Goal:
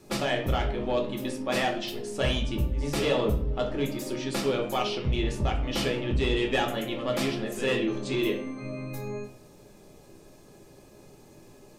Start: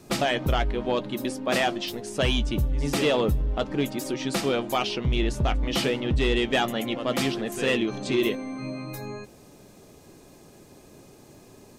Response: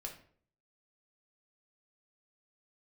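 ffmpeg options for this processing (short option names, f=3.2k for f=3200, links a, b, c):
-filter_complex "[1:a]atrim=start_sample=2205[a];[0:a][a]afir=irnorm=-1:irlink=0"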